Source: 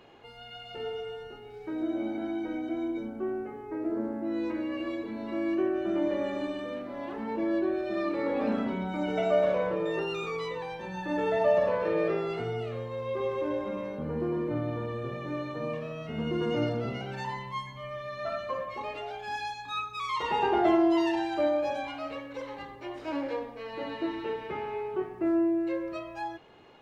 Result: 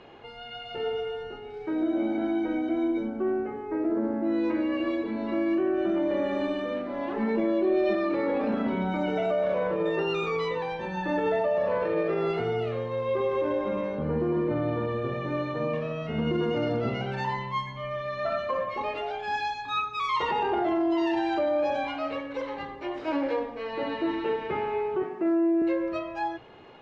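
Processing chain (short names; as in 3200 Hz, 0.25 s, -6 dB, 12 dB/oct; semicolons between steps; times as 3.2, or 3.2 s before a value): air absorption 110 m; notches 60/120/180/240/300 Hz; limiter -25 dBFS, peak gain reduction 11 dB; 7.16–7.95 comb 5 ms, depth 76%; 25.03–25.62 HPF 160 Hz 24 dB/oct; gain +6 dB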